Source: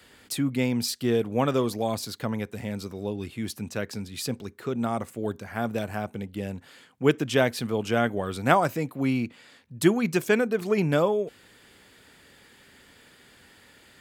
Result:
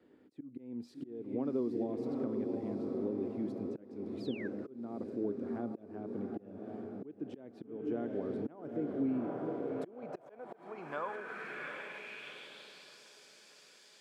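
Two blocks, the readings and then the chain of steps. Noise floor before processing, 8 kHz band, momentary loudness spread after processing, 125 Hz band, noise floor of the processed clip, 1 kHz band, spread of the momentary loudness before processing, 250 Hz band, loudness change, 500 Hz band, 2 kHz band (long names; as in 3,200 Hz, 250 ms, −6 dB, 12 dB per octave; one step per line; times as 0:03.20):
−56 dBFS, below −25 dB, 15 LU, −18.0 dB, −61 dBFS, −16.5 dB, 11 LU, −9.5 dB, −12.5 dB, −12.5 dB, −15.0 dB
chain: feedback delay with all-pass diffusion 760 ms, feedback 60%, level −6.5 dB
downward compressor 6 to 1, threshold −26 dBFS, peak gain reduction 12.5 dB
volume swells 365 ms
sound drawn into the spectrogram fall, 0:04.20–0:04.48, 1,500–5,300 Hz −26 dBFS
band-pass filter sweep 320 Hz → 5,400 Hz, 0:09.39–0:13.08
level +1 dB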